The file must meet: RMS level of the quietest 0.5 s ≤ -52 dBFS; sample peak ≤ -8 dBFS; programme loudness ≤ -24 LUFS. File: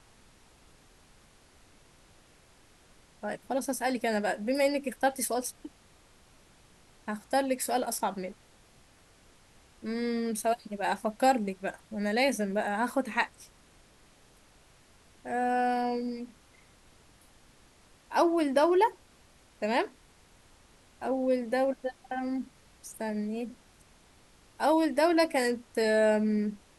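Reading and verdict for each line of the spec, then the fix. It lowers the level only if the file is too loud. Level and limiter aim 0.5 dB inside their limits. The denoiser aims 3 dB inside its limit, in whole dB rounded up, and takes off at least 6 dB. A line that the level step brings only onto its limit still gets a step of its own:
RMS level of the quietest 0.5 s -60 dBFS: OK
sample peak -12.5 dBFS: OK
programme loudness -29.5 LUFS: OK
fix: none

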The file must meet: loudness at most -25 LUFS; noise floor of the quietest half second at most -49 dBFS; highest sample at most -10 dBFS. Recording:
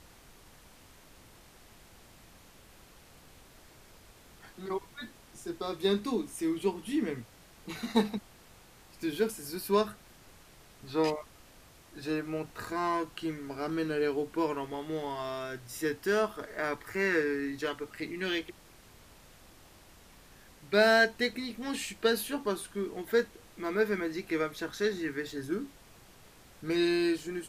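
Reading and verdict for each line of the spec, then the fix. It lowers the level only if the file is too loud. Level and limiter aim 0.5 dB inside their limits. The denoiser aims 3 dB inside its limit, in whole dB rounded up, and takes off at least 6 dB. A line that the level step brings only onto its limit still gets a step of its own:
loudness -32.0 LUFS: OK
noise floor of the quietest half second -56 dBFS: OK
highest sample -11.0 dBFS: OK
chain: none

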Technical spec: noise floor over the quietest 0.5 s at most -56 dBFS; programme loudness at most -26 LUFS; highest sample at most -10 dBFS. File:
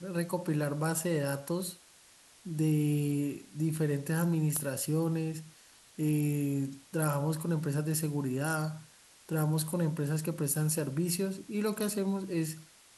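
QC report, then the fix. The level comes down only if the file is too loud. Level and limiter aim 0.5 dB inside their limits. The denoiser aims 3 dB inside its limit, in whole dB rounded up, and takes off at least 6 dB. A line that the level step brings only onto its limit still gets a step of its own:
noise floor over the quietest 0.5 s -59 dBFS: OK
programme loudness -32.0 LUFS: OK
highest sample -17.0 dBFS: OK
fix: none

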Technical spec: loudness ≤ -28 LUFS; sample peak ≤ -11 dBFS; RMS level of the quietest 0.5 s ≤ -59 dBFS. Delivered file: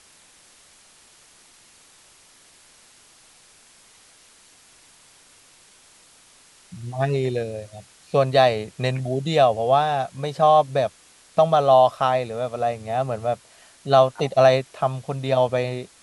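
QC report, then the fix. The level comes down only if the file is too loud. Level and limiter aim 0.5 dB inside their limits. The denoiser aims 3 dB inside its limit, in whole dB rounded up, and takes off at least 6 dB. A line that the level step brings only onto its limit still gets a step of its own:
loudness -21.0 LUFS: fail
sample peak -4.0 dBFS: fail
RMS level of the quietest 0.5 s -53 dBFS: fail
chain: gain -7.5 dB

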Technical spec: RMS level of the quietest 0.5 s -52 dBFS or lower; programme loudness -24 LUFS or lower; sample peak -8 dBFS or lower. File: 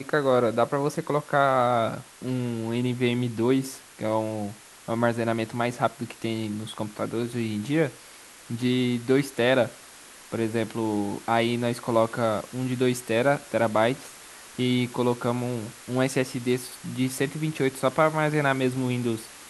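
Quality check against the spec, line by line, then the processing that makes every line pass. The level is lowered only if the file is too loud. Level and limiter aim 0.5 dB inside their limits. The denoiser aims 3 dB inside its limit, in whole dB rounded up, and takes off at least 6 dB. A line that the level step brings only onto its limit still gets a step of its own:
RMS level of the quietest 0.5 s -48 dBFS: fail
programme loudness -26.0 LUFS: OK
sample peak -6.5 dBFS: fail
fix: denoiser 7 dB, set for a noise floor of -48 dBFS; limiter -8.5 dBFS

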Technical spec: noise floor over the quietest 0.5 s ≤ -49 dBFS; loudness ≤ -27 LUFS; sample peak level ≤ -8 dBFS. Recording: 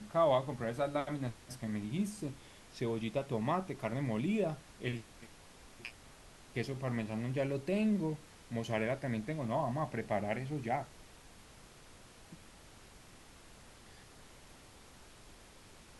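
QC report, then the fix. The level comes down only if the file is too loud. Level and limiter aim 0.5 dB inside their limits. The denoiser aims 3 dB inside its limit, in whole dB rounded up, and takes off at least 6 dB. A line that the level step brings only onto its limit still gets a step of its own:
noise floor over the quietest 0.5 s -57 dBFS: OK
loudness -36.5 LUFS: OK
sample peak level -18.5 dBFS: OK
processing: none

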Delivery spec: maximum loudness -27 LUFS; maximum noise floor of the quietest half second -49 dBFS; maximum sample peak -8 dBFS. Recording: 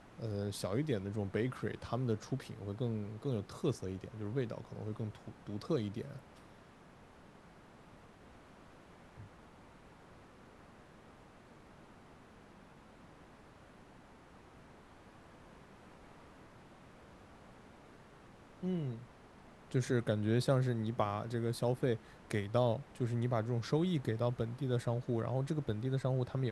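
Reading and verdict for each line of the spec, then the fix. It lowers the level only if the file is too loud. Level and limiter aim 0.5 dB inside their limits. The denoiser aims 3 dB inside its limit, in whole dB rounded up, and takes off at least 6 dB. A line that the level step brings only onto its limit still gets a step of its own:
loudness -37.0 LUFS: OK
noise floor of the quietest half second -59 dBFS: OK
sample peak -17.0 dBFS: OK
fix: none

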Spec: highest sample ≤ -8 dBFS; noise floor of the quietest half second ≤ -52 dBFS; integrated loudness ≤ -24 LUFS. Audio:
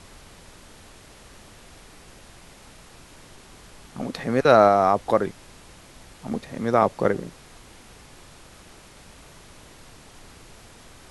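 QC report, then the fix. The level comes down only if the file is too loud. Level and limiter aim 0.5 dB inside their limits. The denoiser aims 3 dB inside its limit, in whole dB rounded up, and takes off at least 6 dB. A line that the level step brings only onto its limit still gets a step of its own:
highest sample -2.0 dBFS: fail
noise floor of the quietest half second -48 dBFS: fail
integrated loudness -21.5 LUFS: fail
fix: denoiser 6 dB, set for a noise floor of -48 dBFS; gain -3 dB; limiter -8.5 dBFS

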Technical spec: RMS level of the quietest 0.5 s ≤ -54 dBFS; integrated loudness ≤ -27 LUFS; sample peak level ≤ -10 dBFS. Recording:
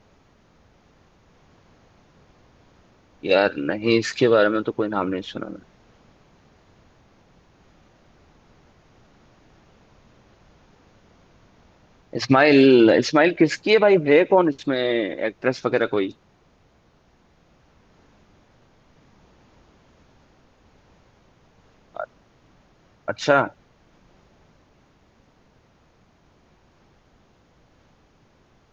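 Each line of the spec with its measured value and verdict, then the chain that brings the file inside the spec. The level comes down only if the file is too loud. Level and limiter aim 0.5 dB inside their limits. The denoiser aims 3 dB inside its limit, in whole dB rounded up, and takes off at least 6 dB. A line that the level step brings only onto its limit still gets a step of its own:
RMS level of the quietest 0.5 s -59 dBFS: OK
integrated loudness -19.5 LUFS: fail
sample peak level -5.0 dBFS: fail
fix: gain -8 dB

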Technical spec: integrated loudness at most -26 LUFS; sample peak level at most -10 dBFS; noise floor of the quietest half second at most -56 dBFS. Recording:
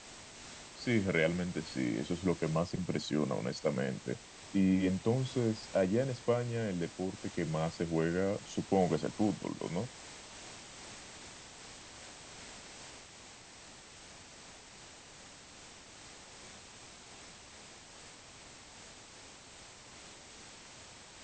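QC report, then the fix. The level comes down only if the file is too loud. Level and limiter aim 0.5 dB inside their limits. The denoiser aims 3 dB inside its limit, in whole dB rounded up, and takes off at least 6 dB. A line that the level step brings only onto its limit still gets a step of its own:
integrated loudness -34.0 LUFS: OK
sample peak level -16.0 dBFS: OK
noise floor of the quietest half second -54 dBFS: fail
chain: denoiser 6 dB, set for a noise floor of -54 dBFS

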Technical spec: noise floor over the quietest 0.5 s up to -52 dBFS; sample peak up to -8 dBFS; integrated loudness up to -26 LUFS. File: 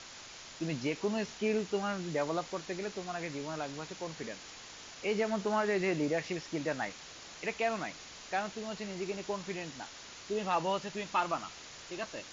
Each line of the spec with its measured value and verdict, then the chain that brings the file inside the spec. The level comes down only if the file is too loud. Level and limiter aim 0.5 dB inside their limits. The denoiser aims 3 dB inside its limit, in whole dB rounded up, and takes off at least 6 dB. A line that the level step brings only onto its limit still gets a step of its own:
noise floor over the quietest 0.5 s -49 dBFS: fail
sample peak -19.0 dBFS: OK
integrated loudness -35.5 LUFS: OK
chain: denoiser 6 dB, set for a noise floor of -49 dBFS

